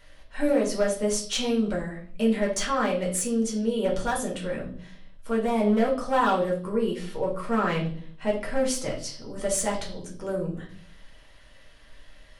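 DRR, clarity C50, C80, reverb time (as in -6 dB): -3.0 dB, 8.5 dB, 13.5 dB, 0.50 s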